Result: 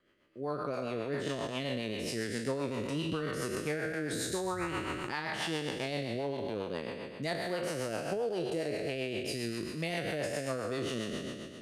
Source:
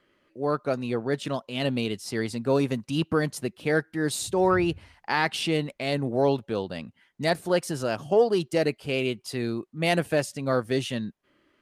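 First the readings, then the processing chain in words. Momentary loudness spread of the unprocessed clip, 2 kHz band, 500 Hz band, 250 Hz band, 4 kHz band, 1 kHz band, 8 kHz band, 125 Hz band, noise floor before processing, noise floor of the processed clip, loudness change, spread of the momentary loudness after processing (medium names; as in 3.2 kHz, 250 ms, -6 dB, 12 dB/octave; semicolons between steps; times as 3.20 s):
8 LU, -7.0 dB, -9.0 dB, -8.5 dB, -6.0 dB, -9.0 dB, -5.0 dB, -9.0 dB, -69 dBFS, -46 dBFS, -8.5 dB, 3 LU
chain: spectral sustain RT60 2.12 s; compression, threshold -24 dBFS, peak gain reduction 10 dB; rotary cabinet horn 7.5 Hz; trim -5 dB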